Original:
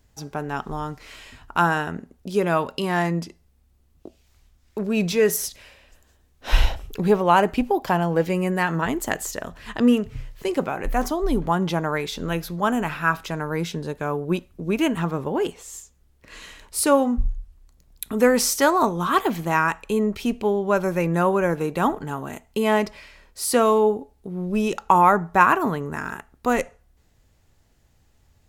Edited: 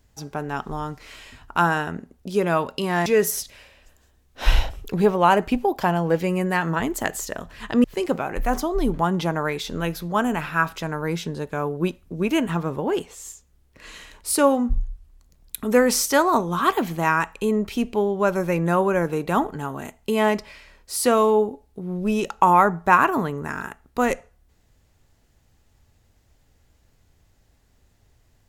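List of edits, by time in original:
3.06–5.12 cut
9.9–10.32 cut

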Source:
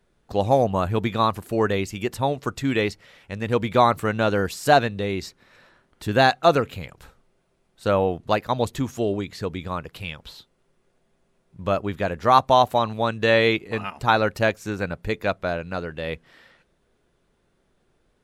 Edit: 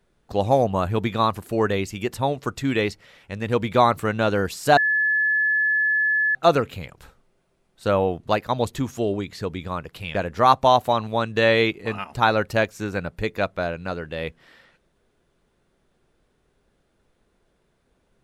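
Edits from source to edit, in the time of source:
4.77–6.35 bleep 1720 Hz -17.5 dBFS
10.15–12.01 cut

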